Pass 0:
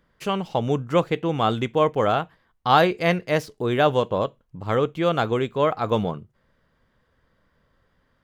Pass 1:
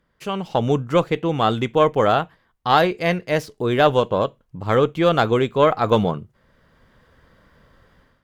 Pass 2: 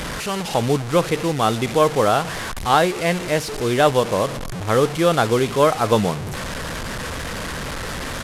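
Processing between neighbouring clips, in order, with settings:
automatic gain control gain up to 14 dB; harmonic generator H 2 −18 dB, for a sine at −0.5 dBFS; level −2.5 dB
linear delta modulator 64 kbit/s, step −22 dBFS; far-end echo of a speakerphone 230 ms, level −24 dB

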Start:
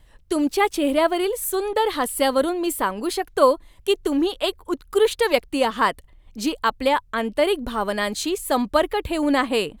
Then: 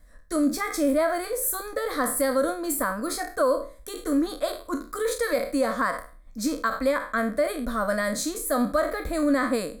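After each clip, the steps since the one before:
peak hold with a decay on every bin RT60 0.37 s
brickwall limiter −12 dBFS, peak gain reduction 8.5 dB
phaser with its sweep stopped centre 580 Hz, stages 8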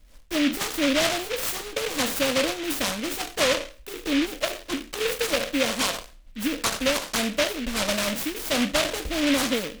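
short delay modulated by noise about 2,400 Hz, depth 0.21 ms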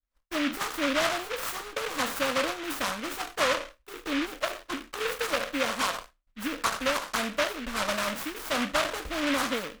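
downward expander −35 dBFS
parametric band 1,200 Hz +10.5 dB 1.4 octaves
level −7.5 dB

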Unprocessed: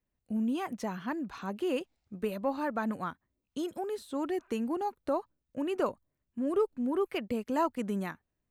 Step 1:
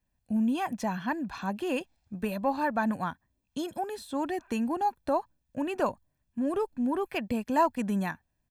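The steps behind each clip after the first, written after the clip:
comb filter 1.2 ms, depth 51%
level +3.5 dB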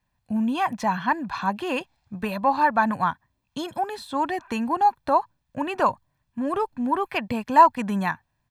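octave-band graphic EQ 125/1,000/2,000/4,000 Hz +8/+11/+5/+6 dB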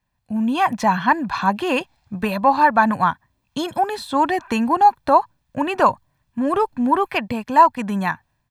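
automatic gain control gain up to 7 dB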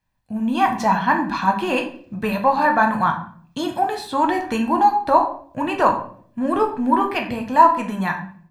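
convolution reverb RT60 0.55 s, pre-delay 6 ms, DRR 2 dB
level −2.5 dB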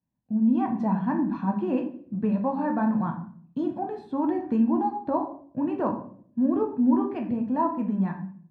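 resonant band-pass 230 Hz, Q 1.5
level +1 dB

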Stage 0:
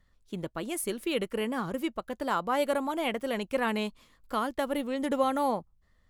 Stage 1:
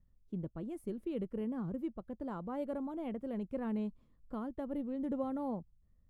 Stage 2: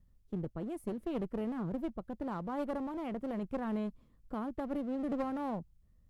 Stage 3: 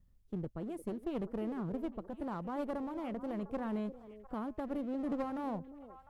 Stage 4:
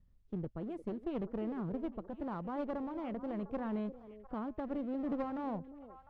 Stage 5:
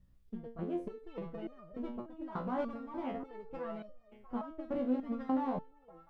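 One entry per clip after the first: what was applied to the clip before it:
drawn EQ curve 180 Hz 0 dB, 2,400 Hz −24 dB, 5,600 Hz −28 dB; level −1 dB
asymmetric clip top −44.5 dBFS; level +4 dB
echo through a band-pass that steps 351 ms, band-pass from 390 Hz, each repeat 1.4 octaves, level −9 dB; level −1.5 dB
high-frequency loss of the air 140 metres
step-sequenced resonator 3.4 Hz 63–610 Hz; level +12 dB

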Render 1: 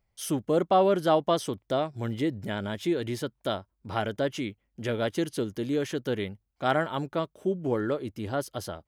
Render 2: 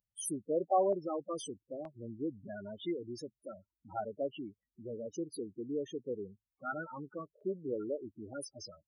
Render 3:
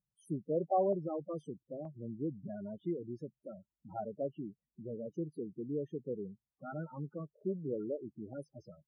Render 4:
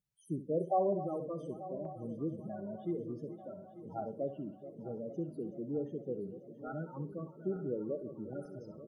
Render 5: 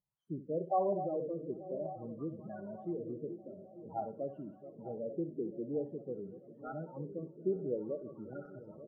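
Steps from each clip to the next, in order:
spectral peaks only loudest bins 8; RIAA equalisation recording; auto-filter notch square 0.54 Hz 700–2,200 Hz; level −4 dB
drawn EQ curve 100 Hz 0 dB, 150 Hz +13 dB, 270 Hz +2 dB, 720 Hz +1 dB, 4,000 Hz −23 dB; level −2.5 dB
feedback delay that plays each chunk backwards 445 ms, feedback 74%, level −13 dB; on a send: repeating echo 65 ms, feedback 23%, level −12 dB
auto-filter low-pass sine 0.51 Hz 400–1,600 Hz; level −3.5 dB

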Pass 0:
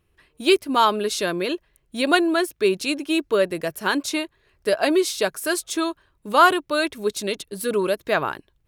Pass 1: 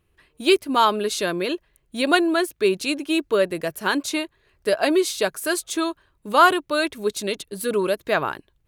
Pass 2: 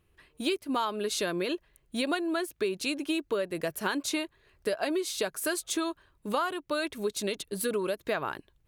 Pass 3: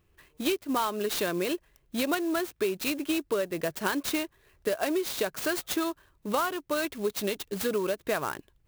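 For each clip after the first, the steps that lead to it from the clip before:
notch filter 5,400 Hz, Q 22
downward compressor 8 to 1, threshold −25 dBFS, peak gain reduction 16 dB; level −1.5 dB
converter with an unsteady clock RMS 0.035 ms; level +1.5 dB

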